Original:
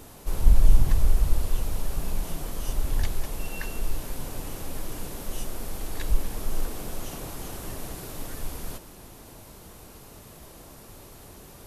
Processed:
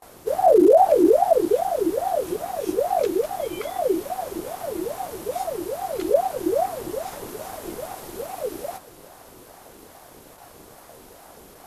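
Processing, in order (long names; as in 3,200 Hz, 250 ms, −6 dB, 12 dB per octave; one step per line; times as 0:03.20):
gain into a clipping stage and back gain 10.5 dB
noise gate with hold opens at −37 dBFS
ring modulator whose carrier an LFO sweeps 550 Hz, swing 40%, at 2.4 Hz
level +3 dB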